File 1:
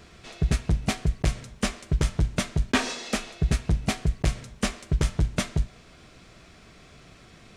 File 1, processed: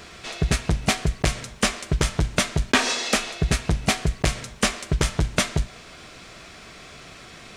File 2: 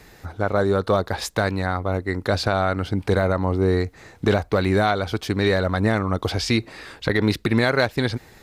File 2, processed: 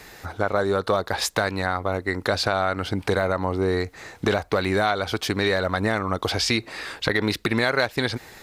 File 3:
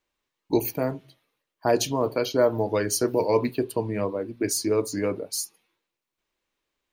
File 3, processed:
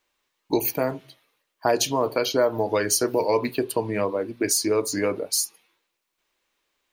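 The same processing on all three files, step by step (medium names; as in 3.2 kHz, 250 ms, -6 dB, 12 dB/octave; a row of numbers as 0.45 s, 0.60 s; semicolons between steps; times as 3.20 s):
bass shelf 360 Hz -9 dB; compression 2:1, threshold -28 dBFS; normalise loudness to -24 LUFS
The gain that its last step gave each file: +10.5 dB, +6.0 dB, +7.5 dB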